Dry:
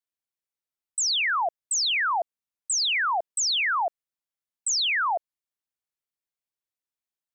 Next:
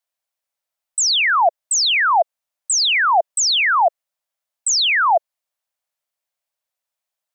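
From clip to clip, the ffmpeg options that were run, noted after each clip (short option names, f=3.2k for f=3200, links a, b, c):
-af "lowshelf=f=470:t=q:w=3:g=-7.5,volume=7.5dB"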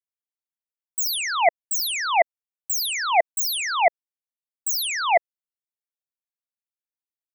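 -af "aeval=exprs='0.398*(cos(1*acos(clip(val(0)/0.398,-1,1)))-cos(1*PI/2))+0.141*(cos(3*acos(clip(val(0)/0.398,-1,1)))-cos(3*PI/2))':c=same,highshelf=f=7.5k:g=10"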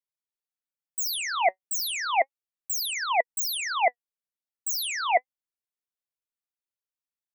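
-af "flanger=delay=1.9:depth=3.4:regen=66:speed=0.33:shape=sinusoidal"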